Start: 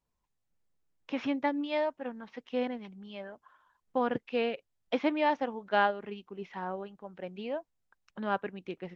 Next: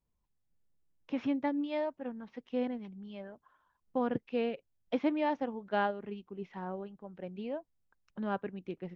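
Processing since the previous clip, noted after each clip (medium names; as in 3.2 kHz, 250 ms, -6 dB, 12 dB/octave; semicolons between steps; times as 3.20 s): bass shelf 460 Hz +10.5 dB; trim -7.5 dB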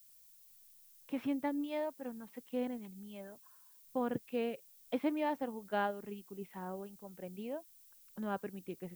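added noise violet -58 dBFS; trim -3.5 dB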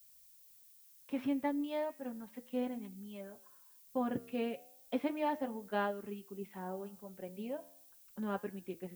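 flange 0.35 Hz, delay 9.6 ms, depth 4.5 ms, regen -89%; comb of notches 160 Hz; trim +6 dB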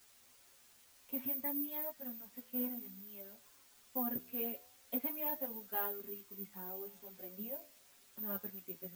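careless resampling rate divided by 3×, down none, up zero stuff; chorus voices 4, 0.52 Hz, delay 10 ms, depth 2.8 ms; trim -4.5 dB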